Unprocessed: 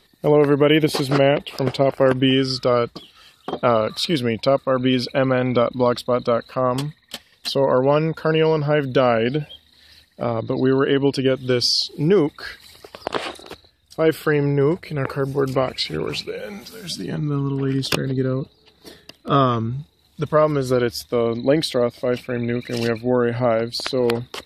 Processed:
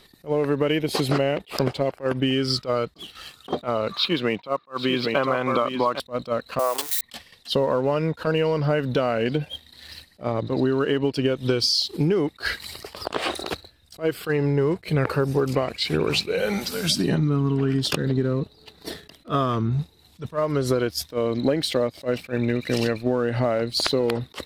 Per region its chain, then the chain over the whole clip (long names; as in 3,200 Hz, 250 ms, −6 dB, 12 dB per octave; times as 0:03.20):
0:03.92–0:06.00: loudspeaker in its box 200–4,000 Hz, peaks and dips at 250 Hz −5 dB, 500 Hz −4 dB, 1,100 Hz +9 dB + single-tap delay 799 ms −8 dB
0:06.59–0:07.01: spike at every zero crossing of −22.5 dBFS + high-pass filter 430 Hz 24 dB per octave + high-shelf EQ 8,000 Hz +6 dB
whole clip: downward compressor 16 to 1, threshold −27 dBFS; leveller curve on the samples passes 1; level that may rise only so fast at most 340 dB per second; level +5.5 dB